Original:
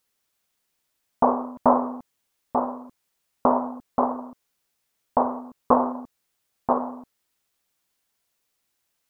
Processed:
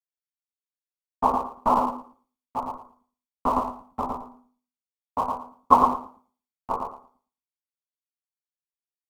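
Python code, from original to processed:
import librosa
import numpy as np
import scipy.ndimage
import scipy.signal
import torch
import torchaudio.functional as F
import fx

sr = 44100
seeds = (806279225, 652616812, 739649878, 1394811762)

p1 = fx.chorus_voices(x, sr, voices=6, hz=0.97, base_ms=12, depth_ms=3.0, mix_pct=45)
p2 = fx.hum_notches(p1, sr, base_hz=50, count=8)
p3 = p2 + 0.53 * np.pad(p2, (int(0.9 * sr / 1000.0), 0))[:len(p2)]
p4 = fx.schmitt(p3, sr, flips_db=-20.5)
p5 = p3 + (p4 * 10.0 ** (-8.5 / 20.0))
p6 = fx.vibrato(p5, sr, rate_hz=13.0, depth_cents=12.0)
p7 = p6 + fx.echo_feedback(p6, sr, ms=113, feedback_pct=28, wet_db=-4.0, dry=0)
p8 = fx.band_widen(p7, sr, depth_pct=100)
y = p8 * 10.0 ** (-3.5 / 20.0)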